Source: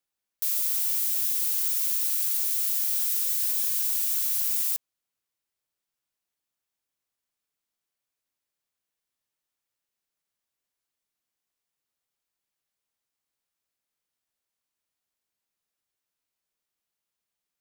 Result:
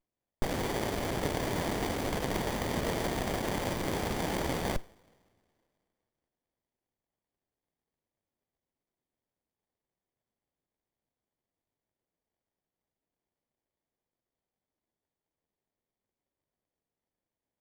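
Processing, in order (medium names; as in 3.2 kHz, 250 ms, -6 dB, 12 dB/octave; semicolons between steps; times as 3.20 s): band-passed feedback delay 190 ms, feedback 73%, band-pass 1.8 kHz, level -21 dB; two-slope reverb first 0.44 s, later 2.5 s, from -18 dB, DRR 15.5 dB; sliding maximum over 33 samples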